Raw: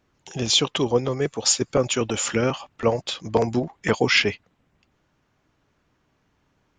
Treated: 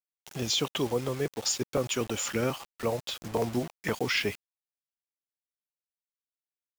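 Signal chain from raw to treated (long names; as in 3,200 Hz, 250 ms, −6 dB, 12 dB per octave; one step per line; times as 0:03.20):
brickwall limiter −11 dBFS, peak gain reduction 5 dB
bit reduction 6 bits
level −6.5 dB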